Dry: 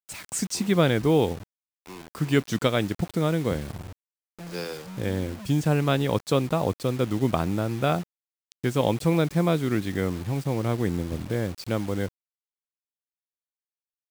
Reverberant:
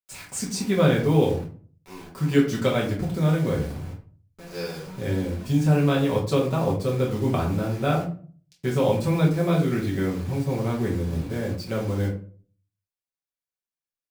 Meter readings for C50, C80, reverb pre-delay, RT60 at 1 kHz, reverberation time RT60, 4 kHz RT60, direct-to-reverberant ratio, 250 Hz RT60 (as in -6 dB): 7.5 dB, 12.5 dB, 5 ms, 0.40 s, 0.45 s, 0.25 s, -5.0 dB, 0.60 s